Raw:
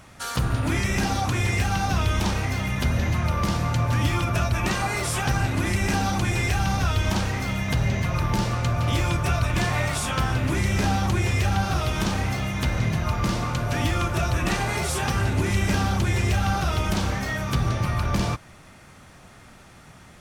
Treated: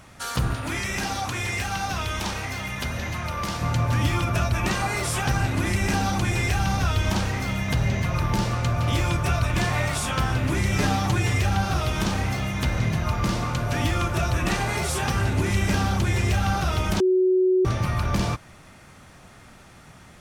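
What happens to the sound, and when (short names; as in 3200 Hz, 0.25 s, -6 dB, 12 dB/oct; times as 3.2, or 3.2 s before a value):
0.53–3.62 low shelf 450 Hz -8.5 dB
10.72–11.38 comb 6.8 ms, depth 67%
17–17.65 bleep 371 Hz -16 dBFS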